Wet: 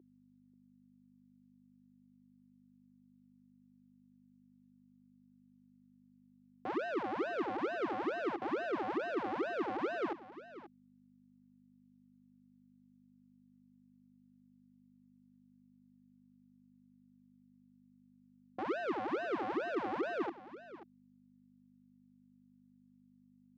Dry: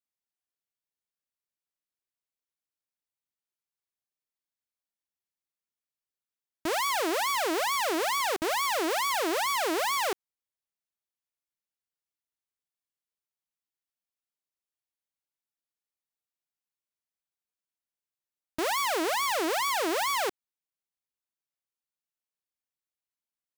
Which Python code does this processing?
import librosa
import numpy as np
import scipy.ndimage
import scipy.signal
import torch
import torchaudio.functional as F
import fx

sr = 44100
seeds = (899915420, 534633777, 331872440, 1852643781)

p1 = x * np.sin(2.0 * np.pi * 430.0 * np.arange(len(x)) / sr)
p2 = fx.add_hum(p1, sr, base_hz=50, snr_db=11)
p3 = fx.highpass_res(p2, sr, hz=340.0, q=3.6)
p4 = fx.spacing_loss(p3, sr, db_at_10k=44)
p5 = p4 + fx.echo_single(p4, sr, ms=535, db=-15.0, dry=0)
y = p5 * librosa.db_to_amplitude(-3.5)